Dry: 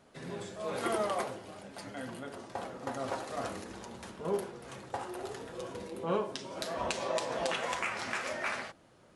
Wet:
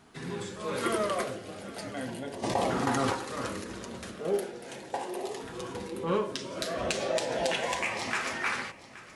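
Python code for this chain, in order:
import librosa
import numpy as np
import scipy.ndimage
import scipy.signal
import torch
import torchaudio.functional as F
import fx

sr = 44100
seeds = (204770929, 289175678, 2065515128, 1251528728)

p1 = fx.highpass(x, sr, hz=220.0, slope=12, at=(4.19, 5.44))
p2 = 10.0 ** (-31.5 / 20.0) * np.tanh(p1 / 10.0 ** (-31.5 / 20.0))
p3 = p1 + (p2 * 10.0 ** (-7.0 / 20.0))
p4 = fx.filter_lfo_notch(p3, sr, shape='saw_up', hz=0.37, low_hz=540.0, high_hz=1500.0, q=2.2)
p5 = p4 + fx.echo_single(p4, sr, ms=823, db=-17.5, dry=0)
p6 = fx.env_flatten(p5, sr, amount_pct=70, at=(2.42, 3.11), fade=0.02)
y = p6 * 10.0 ** (2.5 / 20.0)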